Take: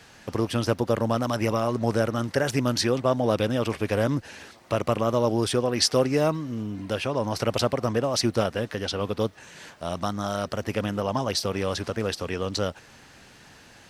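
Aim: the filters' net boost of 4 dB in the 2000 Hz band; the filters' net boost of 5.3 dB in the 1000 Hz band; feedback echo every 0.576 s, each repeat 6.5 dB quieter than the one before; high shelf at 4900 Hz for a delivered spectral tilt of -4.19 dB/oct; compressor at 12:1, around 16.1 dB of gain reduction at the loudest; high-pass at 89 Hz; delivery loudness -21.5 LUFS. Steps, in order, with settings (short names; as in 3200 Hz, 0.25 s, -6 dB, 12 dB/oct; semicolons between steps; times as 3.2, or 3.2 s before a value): HPF 89 Hz; bell 1000 Hz +6 dB; bell 2000 Hz +4.5 dB; high shelf 4900 Hz -8.5 dB; compressor 12:1, threshold -32 dBFS; feedback echo 0.576 s, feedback 47%, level -6.5 dB; gain +15 dB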